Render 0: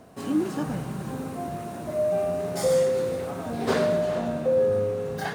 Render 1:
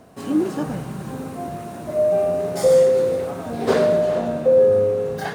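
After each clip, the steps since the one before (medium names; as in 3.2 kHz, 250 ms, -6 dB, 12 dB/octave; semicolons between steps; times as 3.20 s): dynamic bell 480 Hz, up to +6 dB, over -34 dBFS, Q 1.2; trim +2 dB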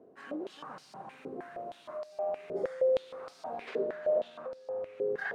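compression 4:1, threshold -22 dBFS, peak gain reduction 9.5 dB; step-sequenced band-pass 6.4 Hz 400–4800 Hz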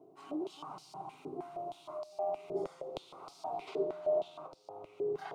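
static phaser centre 340 Hz, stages 8; trim +2 dB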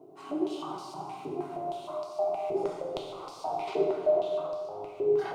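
plate-style reverb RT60 1.6 s, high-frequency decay 0.75×, DRR 1.5 dB; trim +5.5 dB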